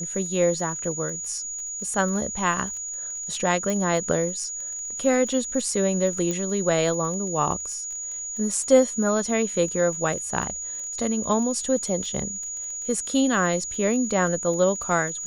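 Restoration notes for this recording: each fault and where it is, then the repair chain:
crackle 21/s -33 dBFS
tone 6800 Hz -30 dBFS
3.7 pop
6.31 pop -14 dBFS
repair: de-click; notch 6800 Hz, Q 30

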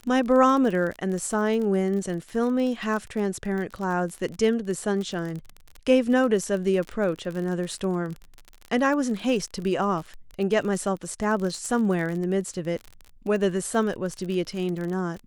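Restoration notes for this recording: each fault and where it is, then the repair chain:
crackle 36/s -30 dBFS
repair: de-click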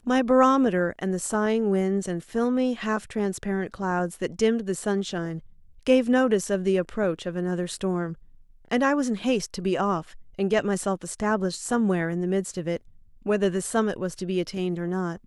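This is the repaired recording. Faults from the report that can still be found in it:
none

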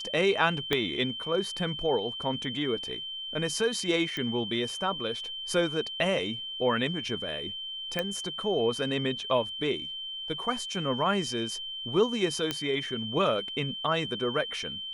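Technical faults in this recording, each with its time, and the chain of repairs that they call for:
tone 3100 Hz -35 dBFS
0.73 pop -11 dBFS
4.17 pop -20 dBFS
7.99 pop -15 dBFS
12.51 pop -13 dBFS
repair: de-click; notch 3100 Hz, Q 30

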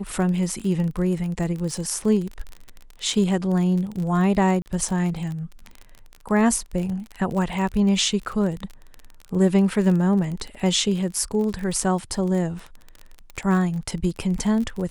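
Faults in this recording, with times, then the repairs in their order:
crackle 32/s -28 dBFS
4.62–4.66 gap 39 ms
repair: de-click; interpolate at 4.62, 39 ms

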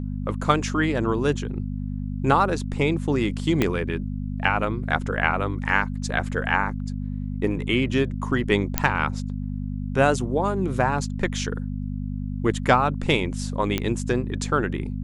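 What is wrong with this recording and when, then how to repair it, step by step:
hum 50 Hz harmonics 5 -29 dBFS
3.62 pop -7 dBFS
8.78 pop -2 dBFS
13.78 pop -9 dBFS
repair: de-click; de-hum 50 Hz, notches 5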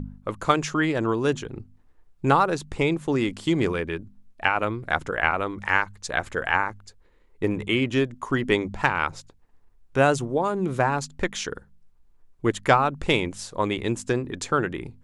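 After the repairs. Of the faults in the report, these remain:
3.62 pop

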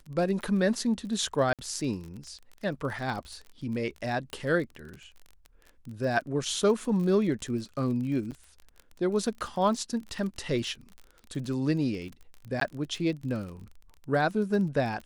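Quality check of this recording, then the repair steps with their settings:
crackle 32/s -36 dBFS
1.53–1.59 gap 57 ms
4.33 pop
8.31–8.32 gap 7.5 ms
12.6–12.61 gap 13 ms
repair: de-click; interpolate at 1.53, 57 ms; interpolate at 8.31, 7.5 ms; interpolate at 12.6, 13 ms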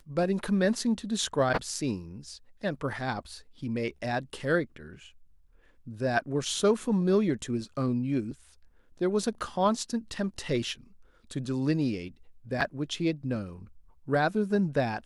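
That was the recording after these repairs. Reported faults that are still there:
none

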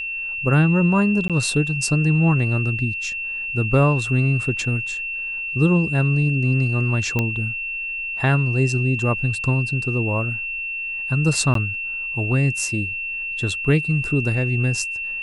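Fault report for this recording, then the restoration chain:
tone 2700 Hz -25 dBFS
1.28–1.3 gap 17 ms
7.19 pop -8 dBFS
11.54–11.55 gap 13 ms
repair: de-click; notch 2700 Hz, Q 30; interpolate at 1.28, 17 ms; interpolate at 11.54, 13 ms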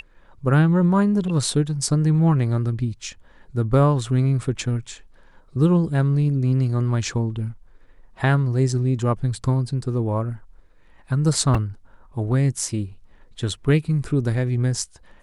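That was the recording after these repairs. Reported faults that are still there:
none

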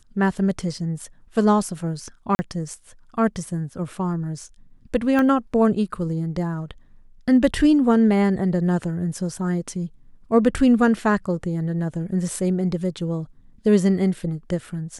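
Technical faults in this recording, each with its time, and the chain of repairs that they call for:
2.35–2.39 gap 40 ms
5.19 pop -12 dBFS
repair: de-click; interpolate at 2.35, 40 ms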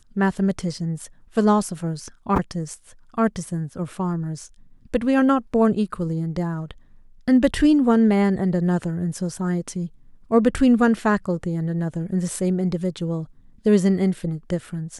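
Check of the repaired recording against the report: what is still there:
5.19 pop

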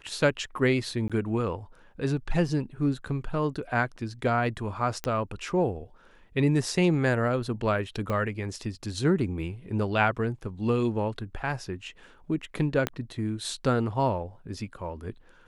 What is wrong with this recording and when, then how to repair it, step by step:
1.08–1.1 gap 16 ms
5.04 pop -15 dBFS
8.1 pop -18 dBFS
12.87 pop -12 dBFS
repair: de-click; interpolate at 1.08, 16 ms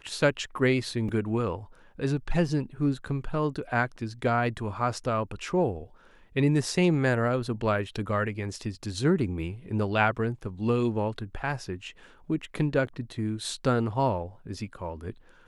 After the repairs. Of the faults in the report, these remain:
8.1 pop
12.87 pop

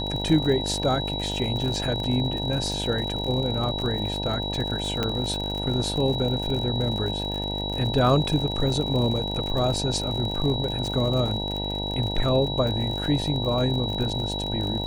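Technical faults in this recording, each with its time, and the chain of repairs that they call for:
buzz 50 Hz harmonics 19 -31 dBFS
crackle 57/s -29 dBFS
tone 3900 Hz -30 dBFS
5.03 pop -11 dBFS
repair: de-click; de-hum 50 Hz, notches 19; notch 3900 Hz, Q 30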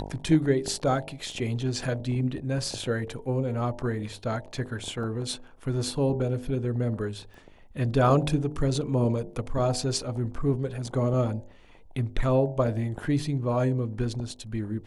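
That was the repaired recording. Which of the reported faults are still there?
5.03 pop

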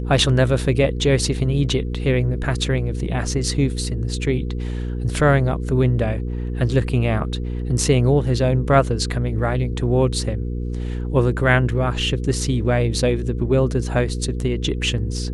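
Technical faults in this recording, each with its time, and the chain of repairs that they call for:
hum 60 Hz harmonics 8 -25 dBFS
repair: de-hum 60 Hz, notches 8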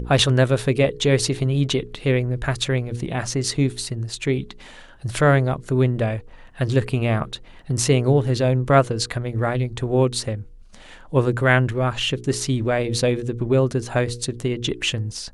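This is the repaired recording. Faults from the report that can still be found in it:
none

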